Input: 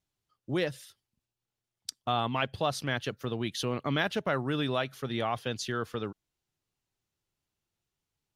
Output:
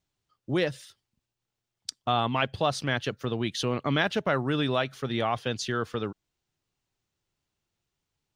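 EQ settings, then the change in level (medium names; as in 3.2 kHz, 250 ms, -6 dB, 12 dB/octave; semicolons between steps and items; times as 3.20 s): peaking EQ 12 kHz -14 dB 0.36 oct; +3.5 dB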